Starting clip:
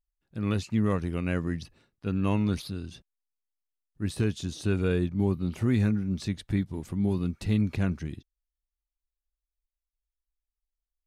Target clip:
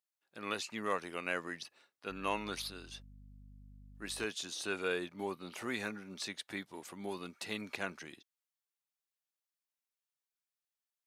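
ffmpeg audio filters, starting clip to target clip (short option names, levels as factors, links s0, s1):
-filter_complex "[0:a]highpass=660,asettb=1/sr,asplit=3[s0][s1][s2];[s0]atrim=end=2.104[s3];[s1]atrim=start=2.1:end=4.25,asetpts=PTS-STARTPTS,afade=t=in:d=0.004:c=qsin,afade=t=out:st=2.146:d=0.004:c=qsin,aeval=exprs='val(0)+0.00178*(sin(2*PI*50*n/s)+sin(2*PI*2*50*n/s)/2+sin(2*PI*3*50*n/s)/3+sin(2*PI*4*50*n/s)/4+sin(2*PI*5*50*n/s)/5)':c=same[s4];[s2]atrim=start=4.246[s5];[s3][s4]acrossfade=d=0.004:c1=hsin:c2=qsin[s6];[s6][s5]acrossfade=d=0.004:c1=qsin:c2=hsin,volume=1.12"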